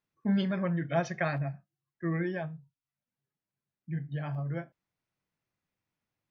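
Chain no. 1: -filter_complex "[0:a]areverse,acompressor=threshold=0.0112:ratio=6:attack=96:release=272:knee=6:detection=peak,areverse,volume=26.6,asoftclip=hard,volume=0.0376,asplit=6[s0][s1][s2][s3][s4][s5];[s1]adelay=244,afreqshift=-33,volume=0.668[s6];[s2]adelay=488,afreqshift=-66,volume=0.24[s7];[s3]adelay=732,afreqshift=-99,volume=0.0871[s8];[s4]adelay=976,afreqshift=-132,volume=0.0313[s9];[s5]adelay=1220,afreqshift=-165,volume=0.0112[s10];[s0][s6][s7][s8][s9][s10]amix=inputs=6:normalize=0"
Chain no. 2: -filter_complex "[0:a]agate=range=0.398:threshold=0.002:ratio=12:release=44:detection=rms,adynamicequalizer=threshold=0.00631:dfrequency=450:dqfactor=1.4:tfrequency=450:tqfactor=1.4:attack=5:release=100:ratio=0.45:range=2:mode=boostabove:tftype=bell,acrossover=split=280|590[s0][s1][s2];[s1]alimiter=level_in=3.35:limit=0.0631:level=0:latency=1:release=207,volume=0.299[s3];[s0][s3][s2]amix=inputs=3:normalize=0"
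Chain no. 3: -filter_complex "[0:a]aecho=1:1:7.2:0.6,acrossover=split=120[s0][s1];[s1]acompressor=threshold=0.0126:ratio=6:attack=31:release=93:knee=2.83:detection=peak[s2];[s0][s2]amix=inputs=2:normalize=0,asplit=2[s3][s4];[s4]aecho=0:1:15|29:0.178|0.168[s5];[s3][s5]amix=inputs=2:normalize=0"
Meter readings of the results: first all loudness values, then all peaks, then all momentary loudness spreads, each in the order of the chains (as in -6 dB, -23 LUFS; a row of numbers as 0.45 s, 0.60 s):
-39.5 LUFS, -33.0 LUFS, -36.0 LUFS; -23.5 dBFS, -16.0 dBFS, -20.0 dBFS; 11 LU, 11 LU, 10 LU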